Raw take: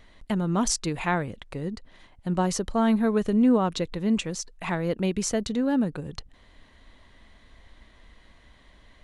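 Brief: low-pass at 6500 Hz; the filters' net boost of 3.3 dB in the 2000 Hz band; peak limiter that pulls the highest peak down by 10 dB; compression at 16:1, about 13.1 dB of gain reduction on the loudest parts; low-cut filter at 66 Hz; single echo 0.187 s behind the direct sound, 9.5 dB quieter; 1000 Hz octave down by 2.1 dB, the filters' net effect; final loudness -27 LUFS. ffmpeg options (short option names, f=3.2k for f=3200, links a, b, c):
-af "highpass=66,lowpass=6.5k,equalizer=f=1k:t=o:g=-4,equalizer=f=2k:t=o:g=5.5,acompressor=threshold=-30dB:ratio=16,alimiter=level_in=4.5dB:limit=-24dB:level=0:latency=1,volume=-4.5dB,aecho=1:1:187:0.335,volume=10dB"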